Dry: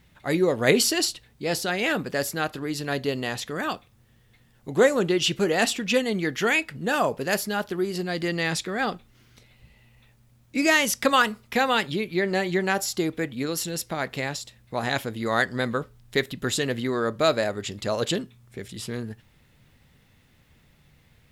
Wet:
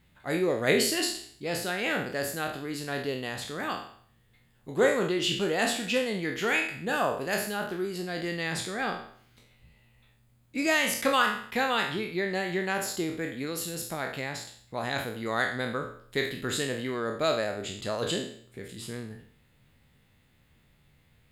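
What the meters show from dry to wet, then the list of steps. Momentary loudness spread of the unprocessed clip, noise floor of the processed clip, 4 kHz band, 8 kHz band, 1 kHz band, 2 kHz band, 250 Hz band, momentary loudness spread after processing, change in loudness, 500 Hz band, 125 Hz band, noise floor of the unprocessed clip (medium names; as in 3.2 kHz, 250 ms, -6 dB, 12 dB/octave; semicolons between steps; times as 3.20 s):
11 LU, -64 dBFS, -4.0 dB, -5.0 dB, -4.0 dB, -3.5 dB, -5.0 dB, 11 LU, -4.5 dB, -4.5 dB, -5.5 dB, -60 dBFS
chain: spectral sustain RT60 0.57 s; peaking EQ 5.7 kHz -9 dB 0.21 oct; trim -6.5 dB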